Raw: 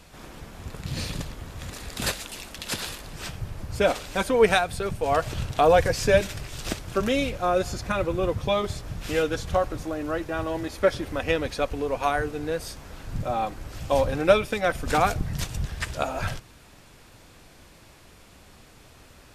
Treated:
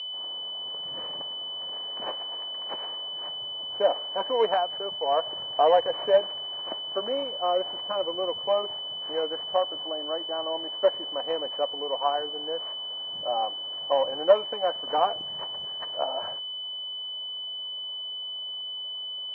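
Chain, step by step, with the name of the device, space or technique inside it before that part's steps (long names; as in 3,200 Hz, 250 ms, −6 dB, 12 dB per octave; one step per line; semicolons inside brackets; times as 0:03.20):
toy sound module (linearly interpolated sample-rate reduction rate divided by 6×; switching amplifier with a slow clock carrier 3,000 Hz; loudspeaker in its box 590–4,900 Hz, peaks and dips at 610 Hz +4 dB, 950 Hz +4 dB, 1,400 Hz −8 dB, 2,200 Hz −4 dB, 3,100 Hz −4 dB, 4,800 Hz −5 dB)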